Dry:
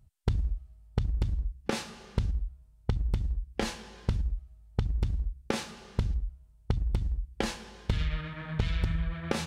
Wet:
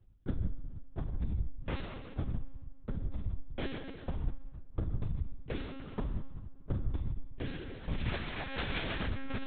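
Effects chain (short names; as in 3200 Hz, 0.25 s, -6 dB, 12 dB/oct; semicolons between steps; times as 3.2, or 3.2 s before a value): 8.07–9.05 spectral whitening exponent 0.3; compressor 4:1, threshold -33 dBFS, peak gain reduction 11 dB; one-sided clip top -35 dBFS; rotary speaker horn 1.1 Hz, later 7.5 Hz, at 7.96; reverb RT60 1.5 s, pre-delay 7 ms, DRR 1 dB; monotone LPC vocoder at 8 kHz 270 Hz; gain +1 dB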